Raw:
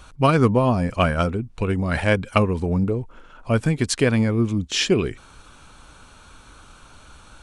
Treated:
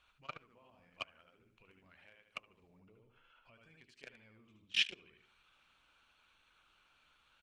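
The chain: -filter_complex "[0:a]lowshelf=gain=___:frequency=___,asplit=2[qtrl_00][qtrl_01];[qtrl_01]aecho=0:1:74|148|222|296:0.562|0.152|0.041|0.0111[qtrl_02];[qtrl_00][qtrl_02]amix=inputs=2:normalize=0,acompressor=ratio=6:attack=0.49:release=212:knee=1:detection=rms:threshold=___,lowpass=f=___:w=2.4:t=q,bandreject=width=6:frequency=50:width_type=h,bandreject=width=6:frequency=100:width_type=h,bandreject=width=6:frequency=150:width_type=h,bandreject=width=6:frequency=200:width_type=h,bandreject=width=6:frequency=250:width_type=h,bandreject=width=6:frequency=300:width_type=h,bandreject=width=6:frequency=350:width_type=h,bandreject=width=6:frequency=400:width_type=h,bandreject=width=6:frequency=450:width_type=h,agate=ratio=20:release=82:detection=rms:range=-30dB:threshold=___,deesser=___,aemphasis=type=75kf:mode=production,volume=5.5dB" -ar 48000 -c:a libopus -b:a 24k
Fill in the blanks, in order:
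-9.5, 400, -36dB, 2800, -35dB, 0.3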